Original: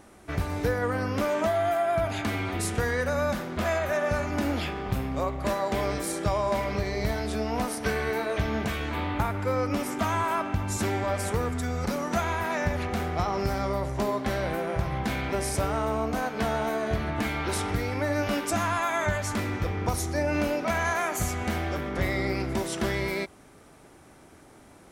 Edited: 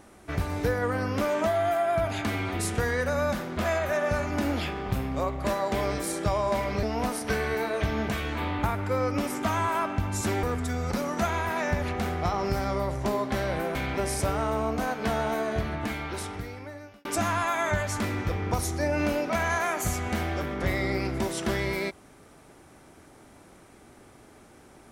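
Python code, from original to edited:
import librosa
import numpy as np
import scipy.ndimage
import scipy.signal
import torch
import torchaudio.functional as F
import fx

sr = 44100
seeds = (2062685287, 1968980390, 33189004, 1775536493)

y = fx.edit(x, sr, fx.cut(start_s=6.83, length_s=0.56),
    fx.cut(start_s=10.99, length_s=0.38),
    fx.cut(start_s=14.69, length_s=0.41),
    fx.fade_out_span(start_s=16.77, length_s=1.63), tone=tone)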